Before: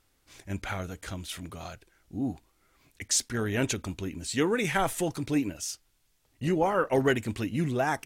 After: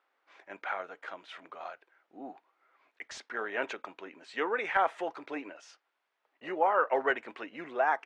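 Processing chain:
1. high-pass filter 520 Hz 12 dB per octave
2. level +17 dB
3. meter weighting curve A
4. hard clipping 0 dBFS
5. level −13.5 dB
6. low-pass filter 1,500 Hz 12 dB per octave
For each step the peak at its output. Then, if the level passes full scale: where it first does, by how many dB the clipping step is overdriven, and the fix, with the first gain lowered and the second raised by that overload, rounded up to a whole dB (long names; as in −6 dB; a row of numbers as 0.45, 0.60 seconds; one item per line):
−11.5, +5.5, +5.0, 0.0, −13.5, −14.0 dBFS
step 2, 5.0 dB
step 2 +12 dB, step 5 −8.5 dB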